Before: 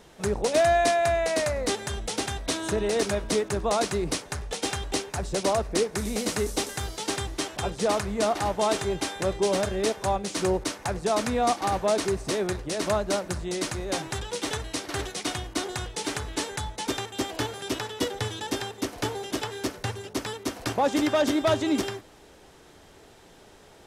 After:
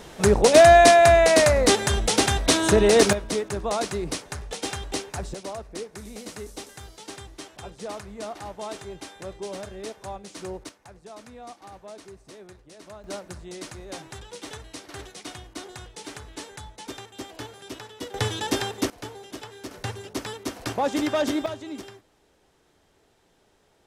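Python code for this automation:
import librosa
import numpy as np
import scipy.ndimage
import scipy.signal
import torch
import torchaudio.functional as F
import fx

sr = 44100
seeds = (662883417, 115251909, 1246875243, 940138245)

y = fx.gain(x, sr, db=fx.steps((0.0, 9.0), (3.13, -1.5), (5.34, -10.5), (10.69, -18.5), (13.04, -8.5), (18.14, 4.5), (18.9, -8.5), (19.71, -1.0), (21.46, -11.5)))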